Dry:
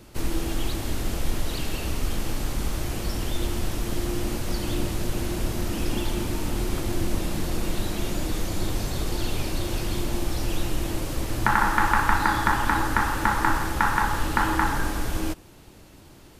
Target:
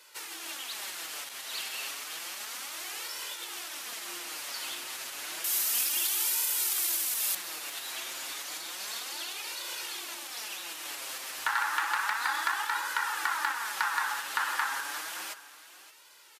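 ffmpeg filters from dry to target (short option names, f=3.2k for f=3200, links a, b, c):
-filter_complex "[0:a]flanger=delay=2:depth=5.7:regen=11:speed=0.31:shape=sinusoidal,volume=16dB,asoftclip=hard,volume=-16dB,asettb=1/sr,asplit=3[a][b][c];[a]atrim=end=5.444[d];[b]atrim=start=5.44:end=7.35,asetpts=PTS-STARTPTS,afade=t=in:d=0.004:c=qsin,afade=t=out:st=1.906:d=0.004:c=qsin,aemphasis=mode=production:type=75fm[e];[c]atrim=start=7.346[f];[d][e]acrossfade=d=0.004:c1=hsin:c2=qsin[g];[g][f]acrossfade=d=0.004:c1=qsin:c2=hsin,aecho=1:1:572:0.133,acompressor=threshold=-24dB:ratio=6,highpass=1.3k,volume=4.5dB" -ar 44100 -c:a libmp3lame -b:a 224k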